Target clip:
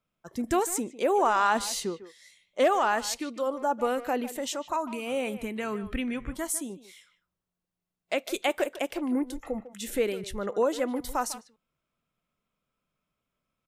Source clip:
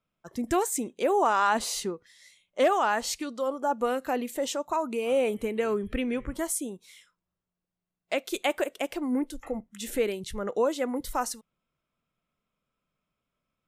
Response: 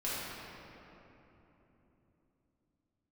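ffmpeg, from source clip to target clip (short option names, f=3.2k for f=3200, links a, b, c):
-filter_complex "[0:a]asettb=1/sr,asplit=3[a][b][c];[a]atrim=end=4.374[d];[b]atrim=start=4.37:end=6.7,asetpts=PTS-STARTPTS,afade=t=in:d=0.004:c=qsin,afade=t=out:st=2.326:d=0.004:c=qsin,equalizer=f=460:t=o:w=0.67:g=-9[e];[c]atrim=start=6.696[f];[d][e]acrossfade=d=0.004:c1=hsin:c2=qsin[g];[g][f]acrossfade=d=0.004:c1=qsin:c2=hsin,asplit=2[h][i];[i]adelay=150,highpass=300,lowpass=3.4k,asoftclip=type=hard:threshold=-23.5dB,volume=-13dB[j];[h][j]amix=inputs=2:normalize=0"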